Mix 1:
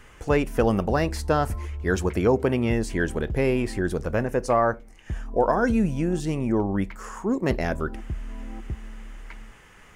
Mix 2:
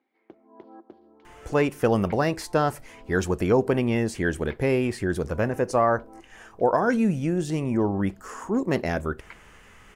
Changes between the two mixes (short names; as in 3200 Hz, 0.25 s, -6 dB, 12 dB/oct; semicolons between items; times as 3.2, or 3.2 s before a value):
speech: entry +1.25 s; background: add Chebyshev band-pass 340–4700 Hz, order 3